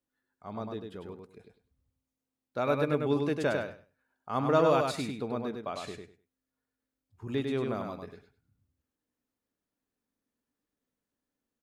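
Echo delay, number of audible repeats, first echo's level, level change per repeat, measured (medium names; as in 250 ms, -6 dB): 100 ms, 3, -4.5 dB, -14.5 dB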